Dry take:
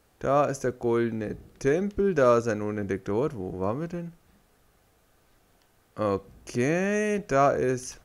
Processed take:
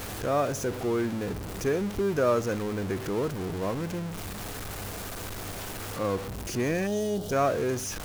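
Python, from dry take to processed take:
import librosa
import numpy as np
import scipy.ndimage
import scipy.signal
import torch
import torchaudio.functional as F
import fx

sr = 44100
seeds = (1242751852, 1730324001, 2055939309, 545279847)

y = x + 0.5 * 10.0 ** (-26.5 / 20.0) * np.sign(x)
y = fx.spec_box(y, sr, start_s=6.87, length_s=0.45, low_hz=860.0, high_hz=2800.0, gain_db=-17)
y = fx.dmg_buzz(y, sr, base_hz=100.0, harmonics=16, level_db=-40.0, tilt_db=-6, odd_only=False)
y = y * librosa.db_to_amplitude(-5.0)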